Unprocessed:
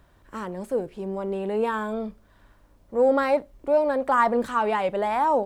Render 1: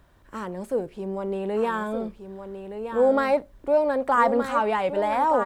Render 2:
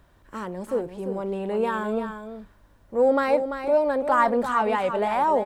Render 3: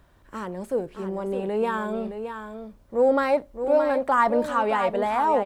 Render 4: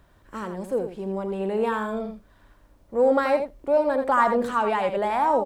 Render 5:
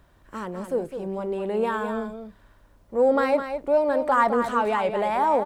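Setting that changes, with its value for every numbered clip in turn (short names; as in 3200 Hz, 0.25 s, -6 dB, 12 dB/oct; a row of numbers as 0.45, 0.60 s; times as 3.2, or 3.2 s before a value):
echo, time: 1220, 341, 618, 83, 208 ms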